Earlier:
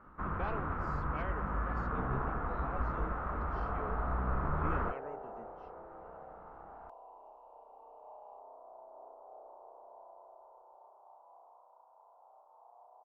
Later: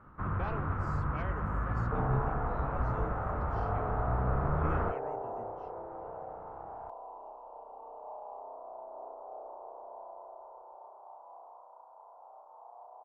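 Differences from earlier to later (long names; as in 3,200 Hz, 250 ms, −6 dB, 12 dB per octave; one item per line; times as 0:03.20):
speech: remove low-pass filter 5,200 Hz
second sound +7.5 dB
master: add parametric band 110 Hz +14.5 dB 0.62 octaves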